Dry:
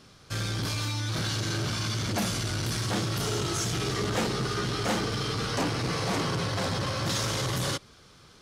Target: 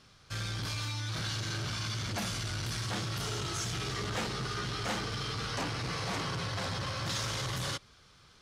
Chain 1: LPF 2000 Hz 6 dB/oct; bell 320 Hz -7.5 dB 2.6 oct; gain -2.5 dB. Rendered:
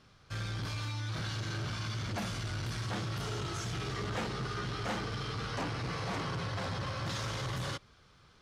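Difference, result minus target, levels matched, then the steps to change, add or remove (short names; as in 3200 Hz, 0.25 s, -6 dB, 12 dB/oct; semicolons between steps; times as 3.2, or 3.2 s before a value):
8000 Hz band -5.0 dB
change: LPF 5900 Hz 6 dB/oct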